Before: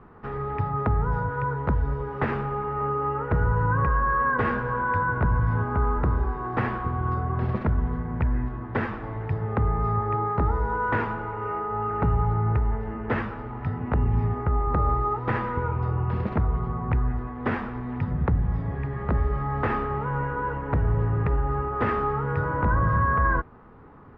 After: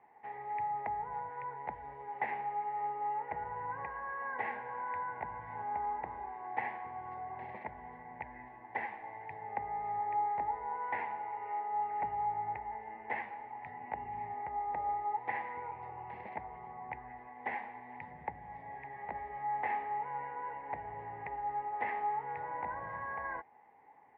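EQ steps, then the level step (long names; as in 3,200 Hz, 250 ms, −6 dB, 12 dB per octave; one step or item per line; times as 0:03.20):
pair of resonant band-passes 1,300 Hz, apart 1.3 octaves
0.0 dB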